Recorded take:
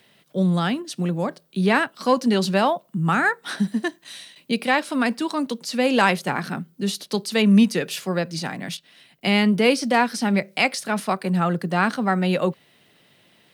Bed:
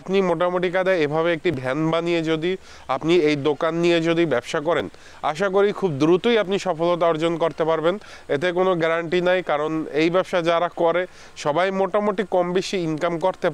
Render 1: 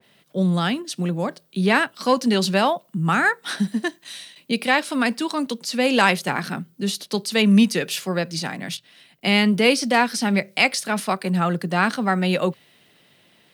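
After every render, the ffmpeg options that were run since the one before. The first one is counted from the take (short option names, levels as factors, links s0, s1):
-af "bandreject=f=60:t=h:w=6,bandreject=f=120:t=h:w=6,adynamicequalizer=threshold=0.0282:dfrequency=1800:dqfactor=0.7:tfrequency=1800:tqfactor=0.7:attack=5:release=100:ratio=0.375:range=2:mode=boostabove:tftype=highshelf"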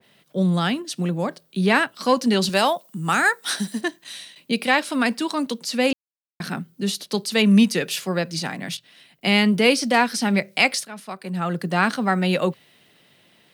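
-filter_complex "[0:a]asettb=1/sr,asplit=3[s0][s1][s2];[s0]atrim=end=2.494[s3];[s1]atrim=start=2.49:end=3.81,asetpts=PTS-STARTPTS,afade=t=in:d=0.004:c=qsin,afade=t=out:st=1.316:d=0.004:c=qsin,bass=f=250:g=-7,treble=f=4000:g=9[s4];[s2]atrim=start=3.806[s5];[s3][s4]acrossfade=d=0.004:c1=hsin:c2=qsin[s6];[s6][s5]acrossfade=d=0.004:c1=qsin:c2=hsin,asplit=4[s7][s8][s9][s10];[s7]atrim=end=5.93,asetpts=PTS-STARTPTS,afade=t=out:st=5.926:d=0.004:c=hsin[s11];[s8]atrim=start=5.93:end=6.4,asetpts=PTS-STARTPTS,volume=0[s12];[s9]atrim=start=6.4:end=10.85,asetpts=PTS-STARTPTS,afade=t=in:d=0.004:c=hsin,afade=t=out:st=4.446:d=0.004:c=hsin:silence=0.199526[s13];[s10]atrim=start=10.85,asetpts=PTS-STARTPTS,afade=t=in:d=0.81:c=qua:silence=0.199526[s14];[s11][s12][s13][s14]concat=n=4:v=0:a=1"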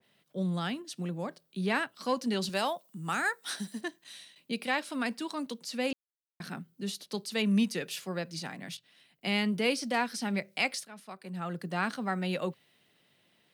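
-af "volume=0.266"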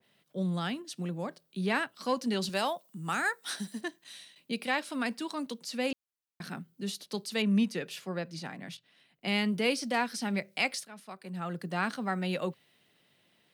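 -filter_complex "[0:a]asettb=1/sr,asplit=3[s0][s1][s2];[s0]atrim=end=7.424[s3];[s1]atrim=start=7.42:end=9.28,asetpts=PTS-STARTPTS,afade=t=in:d=0.004:c=qsin,afade=t=out:st=1.856:d=0.004:c=qsin,highshelf=f=4000:g=-7.5[s4];[s2]atrim=start=9.276[s5];[s3][s4]acrossfade=d=0.004:c1=hsin:c2=qsin[s6];[s6][s5]acrossfade=d=0.004:c1=qsin:c2=hsin"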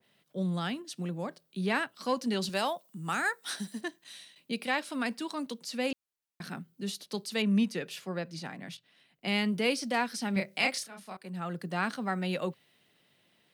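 -filter_complex "[0:a]asettb=1/sr,asplit=3[s0][s1][s2];[s0]atrim=end=10.334[s3];[s1]atrim=start=10.33:end=11.17,asetpts=PTS-STARTPTS,afade=t=in:d=0.004:c=qsin,afade=t=out:st=0.836:d=0.004:c=qsin,asplit=2[s4][s5];[s5]adelay=31,volume=0.708[s6];[s4][s6]amix=inputs=2:normalize=0,atrim=end_sample=37044[s7];[s2]atrim=start=11.166[s8];[s3][s7]acrossfade=d=0.004:c1=hsin:c2=qsin[s9];[s9][s8]acrossfade=d=0.004:c1=qsin:c2=hsin"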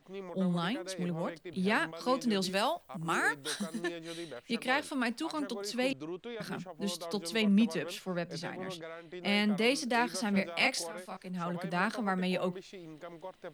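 -filter_complex "[1:a]volume=0.0631[s0];[0:a][s0]amix=inputs=2:normalize=0"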